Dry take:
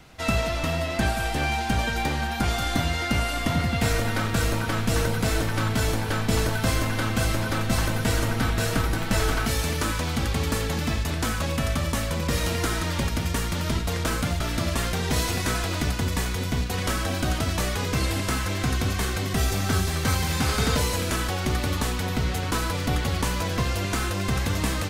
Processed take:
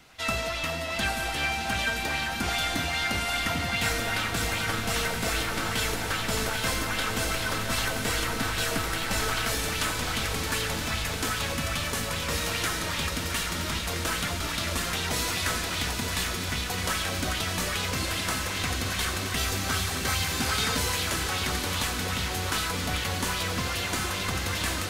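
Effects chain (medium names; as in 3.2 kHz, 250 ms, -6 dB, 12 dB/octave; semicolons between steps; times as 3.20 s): tilt shelf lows -5 dB, about 820 Hz; echo that smears into a reverb 787 ms, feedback 70%, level -6.5 dB; sweeping bell 2.5 Hz 230–3600 Hz +6 dB; trim -5.5 dB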